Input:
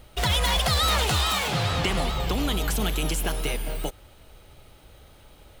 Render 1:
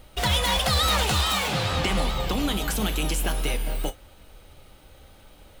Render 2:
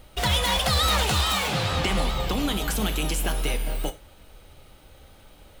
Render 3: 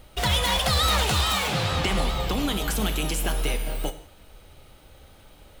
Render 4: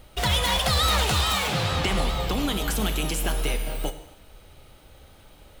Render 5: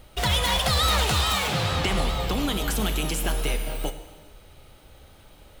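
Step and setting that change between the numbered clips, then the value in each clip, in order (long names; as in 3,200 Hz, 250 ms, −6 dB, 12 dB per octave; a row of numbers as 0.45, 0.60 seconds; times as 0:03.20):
reverb whose tail is shaped and stops, gate: 80, 120, 210, 320, 470 milliseconds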